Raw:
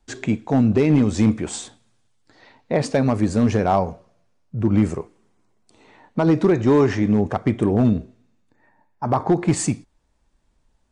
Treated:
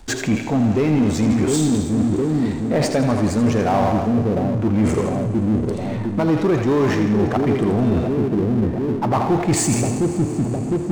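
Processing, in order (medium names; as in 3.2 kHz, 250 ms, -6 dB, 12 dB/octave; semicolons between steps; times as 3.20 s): two-band feedback delay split 520 Hz, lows 708 ms, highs 81 ms, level -7 dB; reverse; compression 4:1, threshold -26 dBFS, peak gain reduction 12.5 dB; reverse; Schroeder reverb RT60 4 s, combs from 26 ms, DRR 12 dB; power-law waveshaper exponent 0.7; trim +7 dB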